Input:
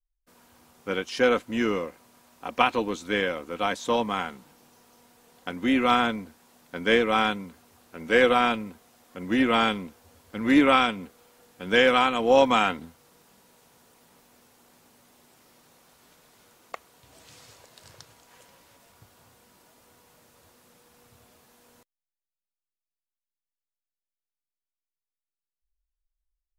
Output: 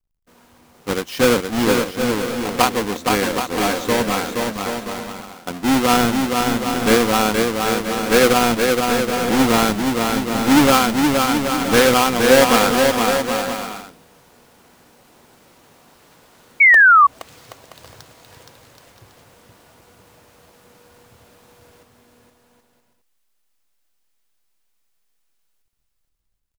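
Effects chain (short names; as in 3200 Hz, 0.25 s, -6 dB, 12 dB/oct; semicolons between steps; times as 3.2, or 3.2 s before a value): half-waves squared off; bouncing-ball echo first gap 0.47 s, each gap 0.65×, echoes 5; painted sound fall, 16.6–17.07, 1100–2300 Hz -10 dBFS; gain +1 dB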